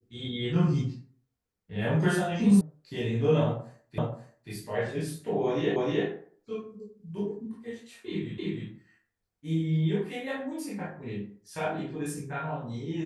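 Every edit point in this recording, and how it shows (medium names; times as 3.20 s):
2.61 s: sound stops dead
3.98 s: repeat of the last 0.53 s
5.76 s: repeat of the last 0.31 s
8.38 s: repeat of the last 0.31 s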